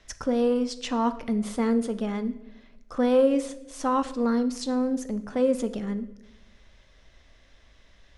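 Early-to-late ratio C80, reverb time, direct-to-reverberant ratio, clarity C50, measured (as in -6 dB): 17.0 dB, 0.95 s, 11.0 dB, 14.5 dB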